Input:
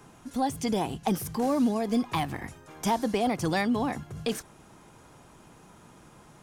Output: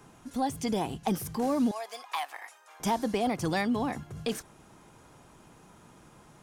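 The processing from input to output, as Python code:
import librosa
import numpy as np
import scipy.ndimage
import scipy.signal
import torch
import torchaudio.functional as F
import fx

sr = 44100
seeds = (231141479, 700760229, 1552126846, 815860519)

y = fx.highpass(x, sr, hz=680.0, slope=24, at=(1.71, 2.8))
y = y * librosa.db_to_amplitude(-2.0)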